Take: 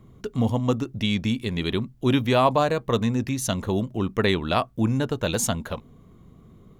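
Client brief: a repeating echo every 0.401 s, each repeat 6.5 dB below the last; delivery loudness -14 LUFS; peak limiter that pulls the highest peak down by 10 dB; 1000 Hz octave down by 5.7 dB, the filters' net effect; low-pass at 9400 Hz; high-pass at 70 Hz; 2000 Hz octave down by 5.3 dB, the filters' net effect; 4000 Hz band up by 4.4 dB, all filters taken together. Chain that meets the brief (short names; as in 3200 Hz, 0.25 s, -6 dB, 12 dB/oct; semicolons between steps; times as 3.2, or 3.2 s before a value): HPF 70 Hz; LPF 9400 Hz; bell 1000 Hz -6 dB; bell 2000 Hz -8.5 dB; bell 4000 Hz +8.5 dB; limiter -16.5 dBFS; feedback echo 0.401 s, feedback 47%, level -6.5 dB; gain +13 dB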